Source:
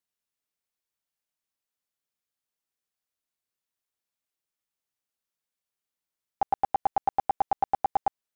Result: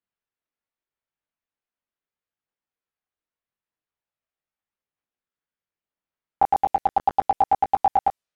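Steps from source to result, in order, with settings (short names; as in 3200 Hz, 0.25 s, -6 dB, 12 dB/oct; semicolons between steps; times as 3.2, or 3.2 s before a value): low-pass opened by the level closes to 2400 Hz; chorus voices 2, 0.4 Hz, delay 21 ms, depth 1.8 ms; transient shaper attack +7 dB, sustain +3 dB; gain +4 dB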